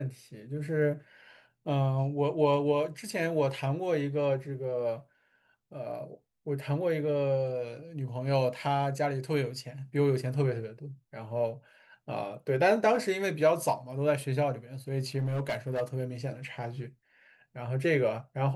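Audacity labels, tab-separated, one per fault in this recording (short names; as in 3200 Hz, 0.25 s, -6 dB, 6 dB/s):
15.180000	15.820000	clipped -26.5 dBFS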